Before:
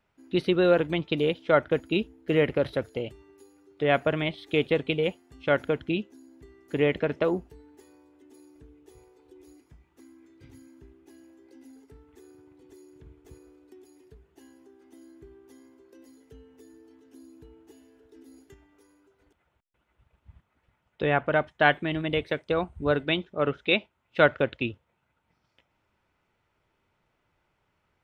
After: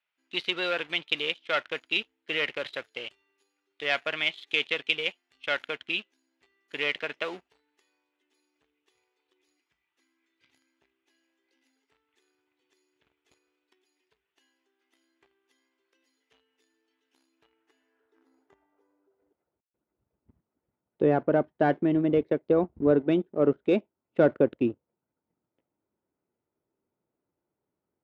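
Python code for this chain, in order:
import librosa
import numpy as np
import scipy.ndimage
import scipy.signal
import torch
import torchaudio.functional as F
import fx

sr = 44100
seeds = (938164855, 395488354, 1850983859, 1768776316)

y = fx.leveller(x, sr, passes=2)
y = fx.filter_sweep_bandpass(y, sr, from_hz=2900.0, to_hz=320.0, start_s=17.25, end_s=19.67, q=1.3)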